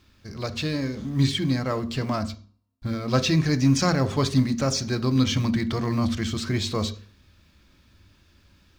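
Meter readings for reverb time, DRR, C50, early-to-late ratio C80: 0.45 s, 11.0 dB, 16.0 dB, 20.5 dB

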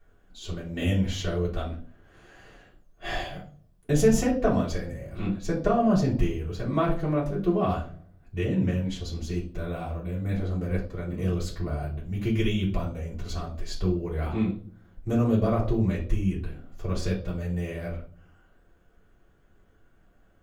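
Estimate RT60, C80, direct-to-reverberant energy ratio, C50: 0.45 s, 13.0 dB, -7.5 dB, 8.5 dB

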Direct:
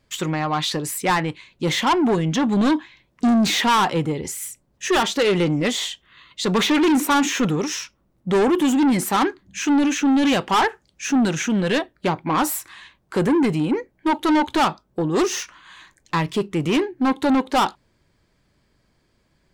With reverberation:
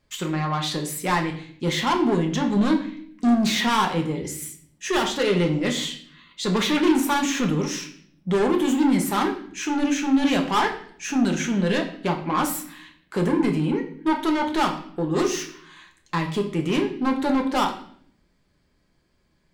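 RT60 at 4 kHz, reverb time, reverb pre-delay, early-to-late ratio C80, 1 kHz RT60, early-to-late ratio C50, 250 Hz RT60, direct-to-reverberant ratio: 0.55 s, 0.60 s, 5 ms, 13.0 dB, 0.55 s, 9.5 dB, 0.95 s, 2.5 dB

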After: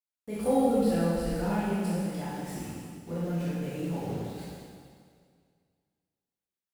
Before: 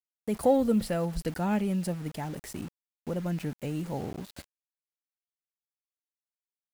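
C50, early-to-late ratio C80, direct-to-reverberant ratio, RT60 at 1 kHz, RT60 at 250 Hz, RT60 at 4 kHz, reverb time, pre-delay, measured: -4.0 dB, -1.5 dB, -10.0 dB, 2.1 s, 2.1 s, 2.0 s, 2.1 s, 6 ms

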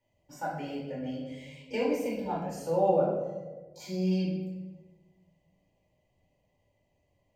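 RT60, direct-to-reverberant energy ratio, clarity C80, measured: 1.3 s, -6.5 dB, 5.0 dB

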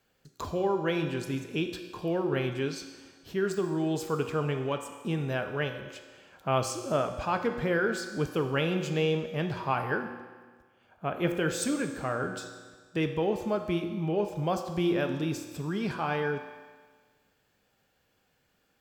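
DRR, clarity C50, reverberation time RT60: 5.5 dB, 8.0 dB, 1.5 s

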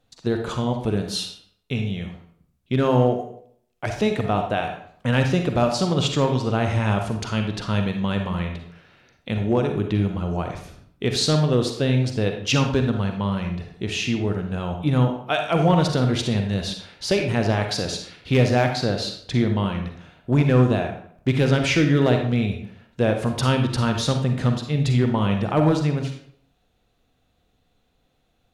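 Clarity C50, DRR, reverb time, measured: 5.5 dB, 4.0 dB, 0.60 s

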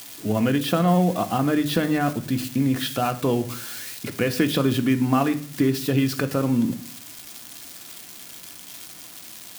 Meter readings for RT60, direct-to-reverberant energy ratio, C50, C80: 0.50 s, 6.5 dB, 15.5 dB, 19.0 dB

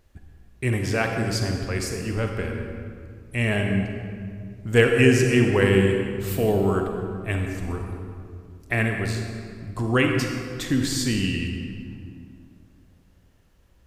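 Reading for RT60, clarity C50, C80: 2.2 s, 3.0 dB, 4.5 dB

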